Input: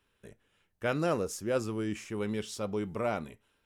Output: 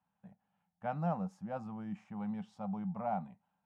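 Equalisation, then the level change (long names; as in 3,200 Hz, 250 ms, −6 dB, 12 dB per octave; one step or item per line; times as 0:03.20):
pair of resonant band-passes 380 Hz, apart 2.1 octaves
+6.5 dB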